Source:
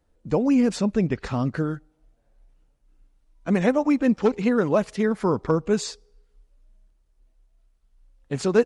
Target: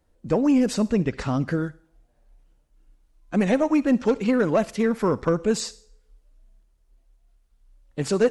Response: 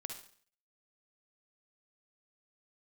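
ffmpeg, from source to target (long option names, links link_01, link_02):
-filter_complex "[0:a]asoftclip=type=tanh:threshold=-11dB,asplit=2[link_01][link_02];[1:a]atrim=start_sample=2205,highshelf=frequency=3700:gain=10.5[link_03];[link_02][link_03]afir=irnorm=-1:irlink=0,volume=-13dB[link_04];[link_01][link_04]amix=inputs=2:normalize=0,asetrate=45938,aresample=44100"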